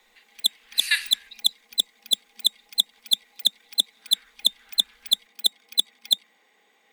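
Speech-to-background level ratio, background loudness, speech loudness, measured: -3.5 dB, -24.0 LUFS, -27.5 LUFS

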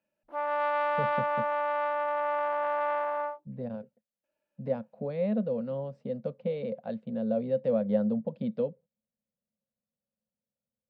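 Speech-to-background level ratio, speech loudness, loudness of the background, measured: -3.0 dB, -32.5 LUFS, -29.5 LUFS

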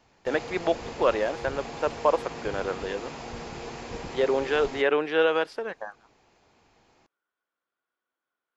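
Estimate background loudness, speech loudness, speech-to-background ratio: -38.5 LUFS, -27.5 LUFS, 11.0 dB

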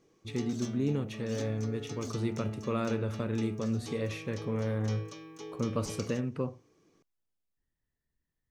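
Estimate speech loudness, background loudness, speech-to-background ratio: -34.5 LUFS, -43.0 LUFS, 8.5 dB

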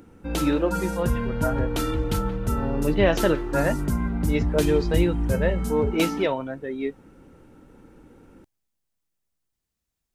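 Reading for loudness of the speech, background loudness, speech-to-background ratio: -26.5 LUFS, -27.0 LUFS, 0.5 dB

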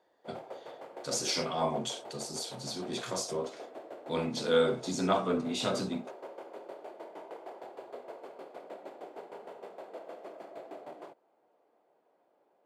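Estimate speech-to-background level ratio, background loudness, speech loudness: 14.5 dB, -47.0 LUFS, -32.5 LUFS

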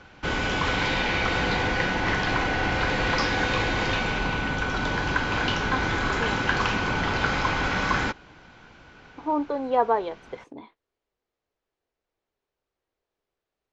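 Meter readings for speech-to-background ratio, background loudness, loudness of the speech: -3.0 dB, -25.0 LUFS, -28.0 LUFS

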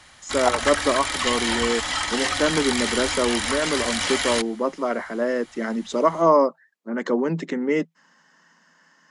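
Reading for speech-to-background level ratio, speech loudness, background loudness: 0.0 dB, -24.0 LUFS, -24.0 LUFS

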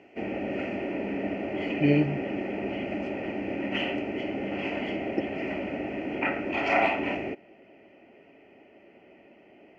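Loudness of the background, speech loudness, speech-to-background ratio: -30.5 LUFS, -28.0 LUFS, 2.5 dB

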